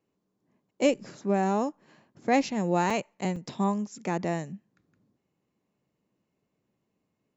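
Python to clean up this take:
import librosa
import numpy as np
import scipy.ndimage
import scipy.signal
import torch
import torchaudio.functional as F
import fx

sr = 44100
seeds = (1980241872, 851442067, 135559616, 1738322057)

y = fx.fix_interpolate(x, sr, at_s=(2.9, 3.36), length_ms=4.4)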